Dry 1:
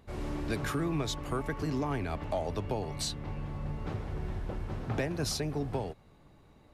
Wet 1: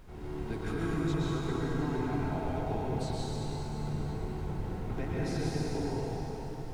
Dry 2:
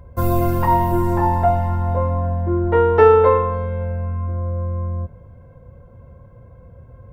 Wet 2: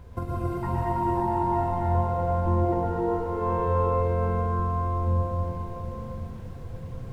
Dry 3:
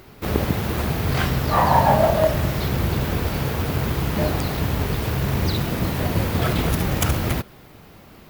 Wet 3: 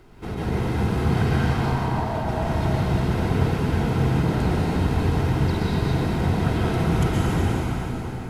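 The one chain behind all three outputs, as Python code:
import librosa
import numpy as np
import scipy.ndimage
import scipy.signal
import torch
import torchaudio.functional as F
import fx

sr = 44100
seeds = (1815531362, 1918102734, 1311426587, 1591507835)

y = scipy.signal.sosfilt(scipy.signal.butter(4, 11000.0, 'lowpass', fs=sr, output='sos'), x)
y = fx.high_shelf(y, sr, hz=2200.0, db=-7.5)
y = fx.over_compress(y, sr, threshold_db=-21.0, ratio=-0.5)
y = fx.notch_comb(y, sr, f0_hz=580.0)
y = fx.dmg_noise_colour(y, sr, seeds[0], colour='brown', level_db=-43.0)
y = fx.echo_split(y, sr, split_hz=600.0, low_ms=144, high_ms=233, feedback_pct=52, wet_db=-14.5)
y = fx.rev_plate(y, sr, seeds[1], rt60_s=4.2, hf_ratio=0.8, predelay_ms=100, drr_db=-6.5)
y = y * librosa.db_to_amplitude(-6.0)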